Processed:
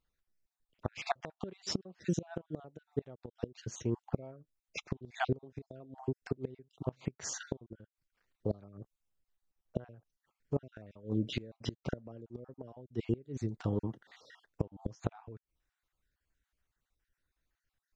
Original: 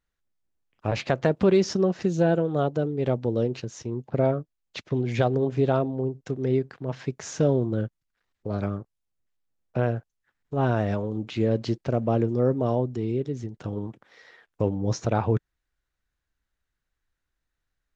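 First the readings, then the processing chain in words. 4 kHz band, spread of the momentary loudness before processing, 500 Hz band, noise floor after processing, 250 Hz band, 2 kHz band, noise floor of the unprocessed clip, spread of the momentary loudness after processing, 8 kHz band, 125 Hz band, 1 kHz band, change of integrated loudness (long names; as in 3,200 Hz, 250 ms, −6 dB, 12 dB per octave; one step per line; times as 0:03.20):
−6.0 dB, 11 LU, −16.5 dB, below −85 dBFS, −13.0 dB, −9.5 dB, −82 dBFS, 16 LU, can't be measured, −13.0 dB, −12.5 dB, −13.5 dB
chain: time-frequency cells dropped at random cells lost 35%
gate with flip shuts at −18 dBFS, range −25 dB
level −1 dB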